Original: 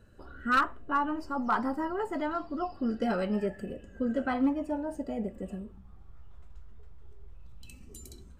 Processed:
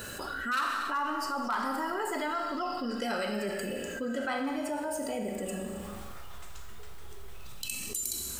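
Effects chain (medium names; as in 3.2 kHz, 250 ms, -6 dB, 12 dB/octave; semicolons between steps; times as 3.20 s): tilt EQ +4 dB/octave; Schroeder reverb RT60 1.1 s, combs from 30 ms, DRR 5 dB; level flattener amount 70%; trim -9 dB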